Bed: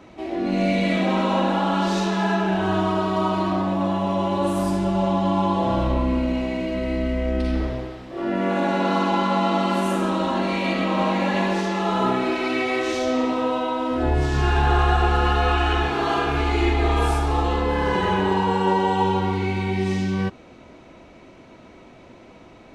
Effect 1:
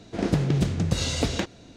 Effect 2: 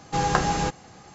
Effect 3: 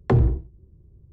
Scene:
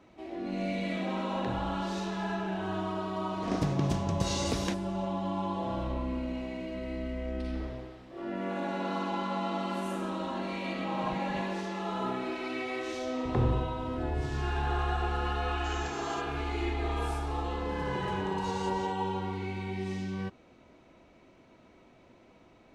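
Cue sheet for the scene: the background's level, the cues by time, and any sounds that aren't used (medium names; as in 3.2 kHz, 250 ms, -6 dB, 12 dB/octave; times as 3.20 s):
bed -12 dB
1.35 s: add 3 -6 dB + compression, threshold -31 dBFS
3.29 s: add 1 -7 dB + peaking EQ 5.7 kHz +4 dB 0.35 oct
10.72 s: add 2 -15.5 dB + spectral contrast enhancement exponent 3.5
13.25 s: add 3 -12 dB + spectral levelling over time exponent 0.4
15.51 s: add 2 -12.5 dB + differentiator
17.47 s: add 1 -15.5 dB + peak limiter -19 dBFS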